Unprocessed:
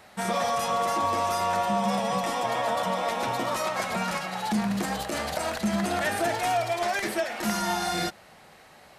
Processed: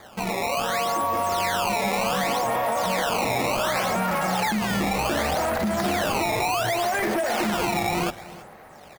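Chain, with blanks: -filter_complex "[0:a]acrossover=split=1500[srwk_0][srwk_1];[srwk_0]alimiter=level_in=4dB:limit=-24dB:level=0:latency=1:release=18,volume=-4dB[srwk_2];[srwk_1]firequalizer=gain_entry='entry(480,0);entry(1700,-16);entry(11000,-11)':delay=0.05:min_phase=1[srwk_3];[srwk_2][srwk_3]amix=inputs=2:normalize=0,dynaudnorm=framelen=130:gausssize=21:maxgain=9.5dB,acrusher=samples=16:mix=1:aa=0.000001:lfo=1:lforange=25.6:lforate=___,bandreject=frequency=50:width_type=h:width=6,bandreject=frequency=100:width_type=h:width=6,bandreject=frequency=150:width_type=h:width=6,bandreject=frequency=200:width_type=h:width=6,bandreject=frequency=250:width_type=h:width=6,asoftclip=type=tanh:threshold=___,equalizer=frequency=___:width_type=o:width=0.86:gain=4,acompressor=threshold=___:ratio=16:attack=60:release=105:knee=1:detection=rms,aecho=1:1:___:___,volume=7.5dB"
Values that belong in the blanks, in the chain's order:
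0.67, -20.5dB, 2100, -31dB, 323, 0.112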